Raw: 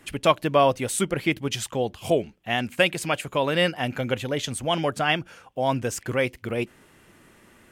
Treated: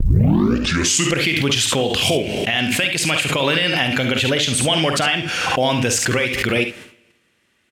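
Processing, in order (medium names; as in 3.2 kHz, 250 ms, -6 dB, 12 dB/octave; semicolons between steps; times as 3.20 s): tape start-up on the opening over 1.15 s; gate -49 dBFS, range -25 dB; bass shelf 140 Hz +12 dB; in parallel at +1.5 dB: compression 6:1, threshold -32 dBFS, peak gain reduction 25 dB; on the sum: frequency weighting D; peak limiter -11 dBFS, peak gain reduction 14 dB; short-mantissa float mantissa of 6-bit; on a send: early reflections 50 ms -9.5 dB, 70 ms -10 dB; on the sum: Schroeder reverb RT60 0.95 s, combs from 31 ms, DRR 17.5 dB; swell ahead of each attack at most 24 dB/s; trim +3 dB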